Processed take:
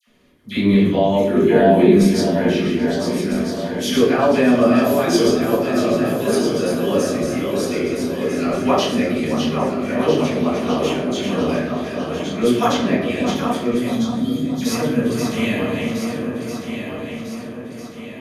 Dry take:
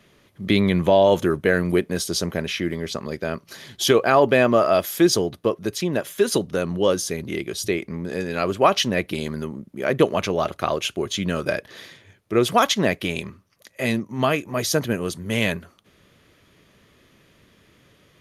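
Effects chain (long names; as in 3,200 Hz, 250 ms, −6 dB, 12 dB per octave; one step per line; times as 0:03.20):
feedback delay that plays each chunk backwards 650 ms, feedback 68%, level −5 dB
0:01.28–0:01.94: hollow resonant body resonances 220/380/680/2,500 Hz, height 10 dB
0:12.65–0:13.10: high-shelf EQ 9,100 Hz −9 dB
0:13.84–0:14.59: linear-phase brick-wall band-stop 300–3,100 Hz
parametric band 250 Hz +12 dB 0.31 octaves
all-pass dispersion lows, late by 72 ms, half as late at 1,500 Hz
on a send: tape delay 626 ms, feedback 59%, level −8.5 dB, low-pass 1,700 Hz
on the sum: rectangular room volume 160 cubic metres, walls mixed, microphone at 1.8 metres
level −8.5 dB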